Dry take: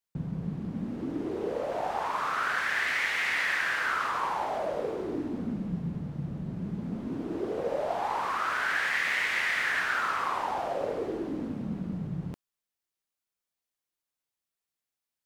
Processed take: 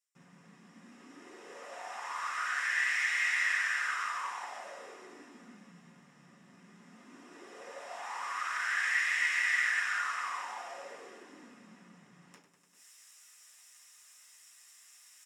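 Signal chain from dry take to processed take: feedback delay 98 ms, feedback 55%, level -21 dB; reverberation RT60 0.30 s, pre-delay 3 ms, DRR -4.5 dB; reverse; upward compressor, threshold -22 dBFS; reverse; band-pass filter 7.4 kHz, Q 2.3; trim +2 dB

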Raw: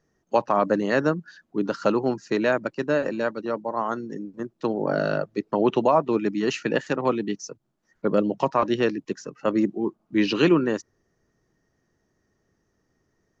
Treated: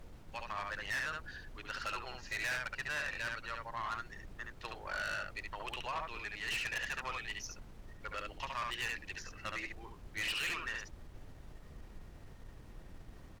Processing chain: delay 70 ms -5 dB; level rider; ladder band-pass 2.6 kHz, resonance 35%; added noise brown -52 dBFS; valve stage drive 37 dB, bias 0.35; trim +4.5 dB

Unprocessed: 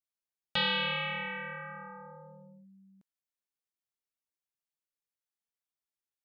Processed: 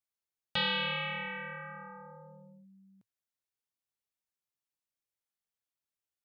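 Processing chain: peaking EQ 110 Hz +7.5 dB 0.38 oct; trim -1.5 dB

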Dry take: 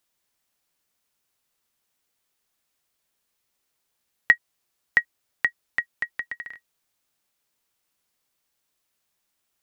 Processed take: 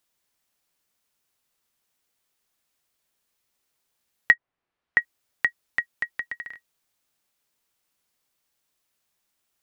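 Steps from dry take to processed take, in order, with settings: 4.33–5.00 s: low-pass 1.5 kHz -> 2.9 kHz 12 dB/octave

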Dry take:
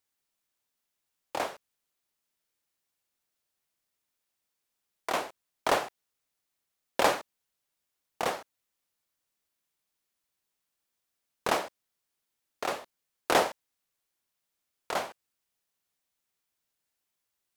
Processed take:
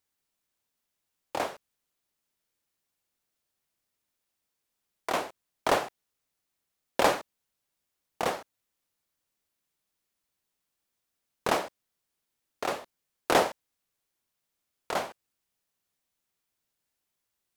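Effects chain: bass shelf 440 Hz +4 dB

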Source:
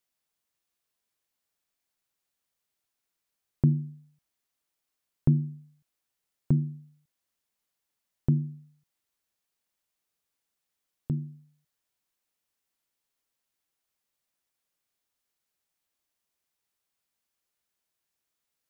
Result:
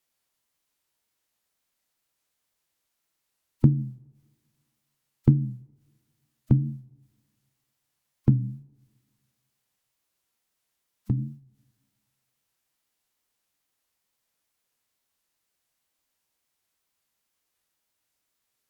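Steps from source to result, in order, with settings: formant-preserving pitch shift -2 st; wow and flutter 110 cents; two-slope reverb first 0.21 s, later 1.8 s, from -22 dB, DRR 16 dB; trim +5 dB

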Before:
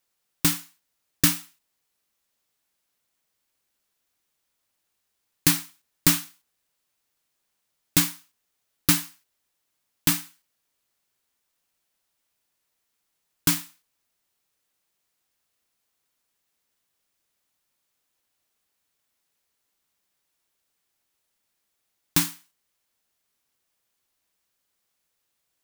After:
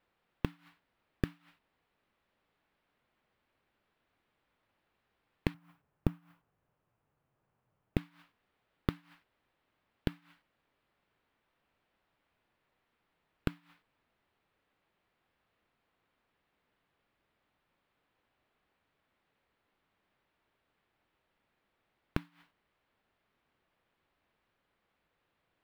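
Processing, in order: 5.54–7.97 s: graphic EQ 125/250/2000/4000/8000 Hz +10/-3/-6/-12/-4 dB; inverted gate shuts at -20 dBFS, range -30 dB; saturation -16.5 dBFS, distortion -11 dB; distance through air 480 m; trim +8.5 dB

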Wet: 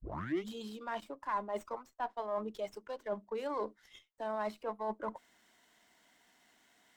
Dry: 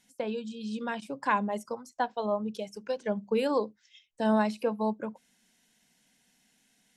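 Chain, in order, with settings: tape start-up on the opening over 0.48 s; three-band isolator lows -24 dB, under 460 Hz, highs -17 dB, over 2.5 kHz; reverse; compression 4:1, threshold -46 dBFS, peak gain reduction 19 dB; reverse; graphic EQ with 31 bands 315 Hz +6 dB, 500 Hz -9 dB, 800 Hz -7 dB, 1.6 kHz -8 dB, 2.5 kHz -12 dB, 8 kHz +8 dB; sliding maximum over 3 samples; trim +13 dB

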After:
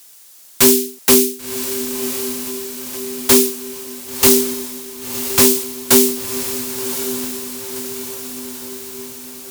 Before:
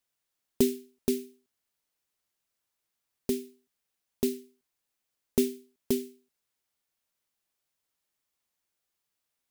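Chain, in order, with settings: high-pass 160 Hz 12 dB/octave; tone controls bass -4 dB, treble +11 dB; compression 6:1, threshold -27 dBFS, peak gain reduction 10.5 dB; sine folder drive 20 dB, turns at -10.5 dBFS; echo that smears into a reverb 1066 ms, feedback 60%, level -8.5 dB; trim +6 dB

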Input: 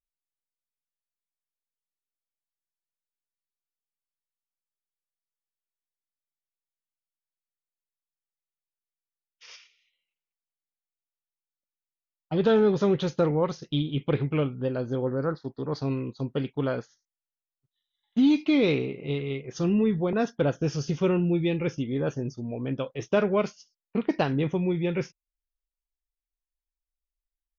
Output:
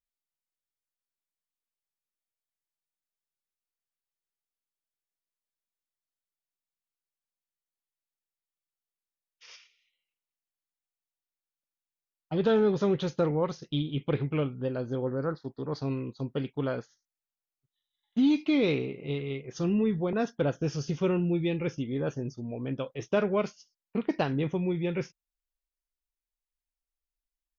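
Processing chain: trim -3 dB

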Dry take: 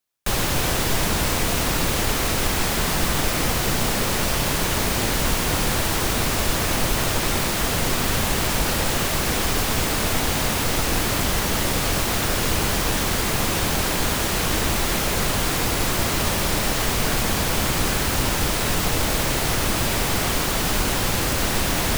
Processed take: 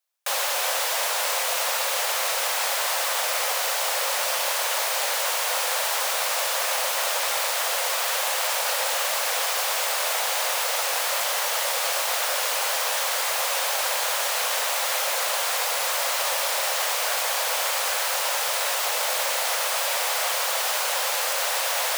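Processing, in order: Chebyshev high-pass 520 Hz, order 5

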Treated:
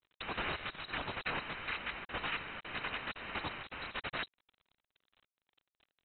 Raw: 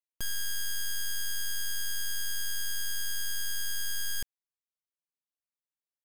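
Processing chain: random holes in the spectrogram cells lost 40%; hum notches 60/120/180 Hz; peak limiter -32 dBFS, peak gain reduction 7.5 dB; Schmitt trigger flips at -55.5 dBFS; crackle 170 per s -51 dBFS; noise-vocoded speech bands 8; companded quantiser 6-bit; frequency inversion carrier 4 kHz; trim +7.5 dB

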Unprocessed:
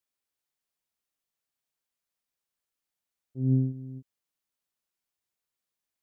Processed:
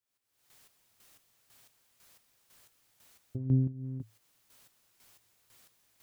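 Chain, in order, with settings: recorder AGC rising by 66 dB/s; peaking EQ 110 Hz +12.5 dB 0.21 oct; square tremolo 2 Hz, depth 65%, duty 35%; trim -3.5 dB

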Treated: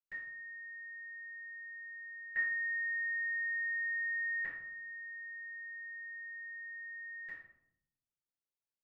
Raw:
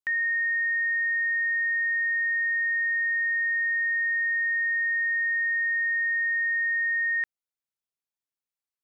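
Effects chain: peaking EQ 1.8 kHz -3.5 dB 1.9 oct, from 2.31 s +8 dB, from 4.40 s -2 dB; flutter echo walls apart 8.8 m, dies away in 0.27 s; reverberation RT60 0.75 s, pre-delay 48 ms

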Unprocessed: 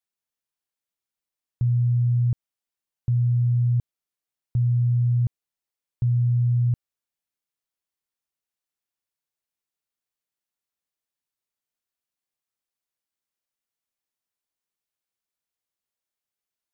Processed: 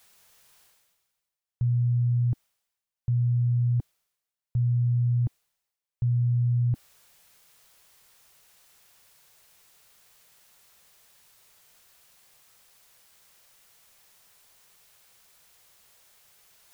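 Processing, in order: peaking EQ 280 Hz -15 dB 0.41 oct; reverse; upward compressor, threshold -31 dBFS; reverse; trim -2.5 dB

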